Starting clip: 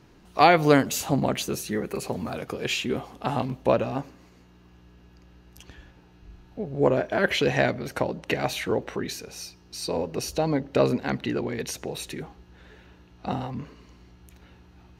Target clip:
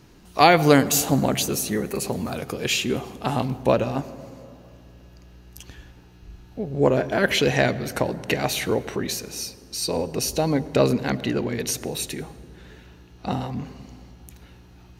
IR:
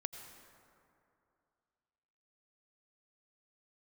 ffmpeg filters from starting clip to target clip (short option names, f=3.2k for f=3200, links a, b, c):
-filter_complex "[0:a]highshelf=f=4.4k:g=10,asplit=2[a][b];[1:a]atrim=start_sample=2205,lowshelf=f=490:g=10[c];[b][c]afir=irnorm=-1:irlink=0,volume=-8dB[d];[a][d]amix=inputs=2:normalize=0,volume=-1.5dB"